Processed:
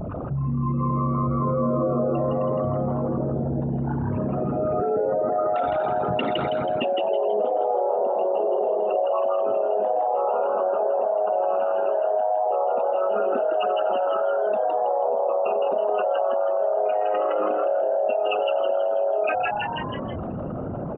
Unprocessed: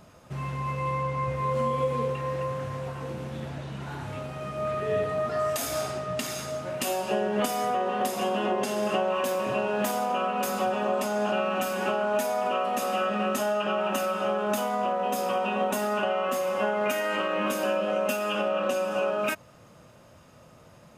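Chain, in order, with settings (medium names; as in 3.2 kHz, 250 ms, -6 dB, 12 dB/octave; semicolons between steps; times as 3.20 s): resonances exaggerated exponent 3; on a send: frequency-shifting echo 162 ms, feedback 37%, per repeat +100 Hz, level -3 dB; on the sum: resampled via 8 kHz; level flattener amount 70%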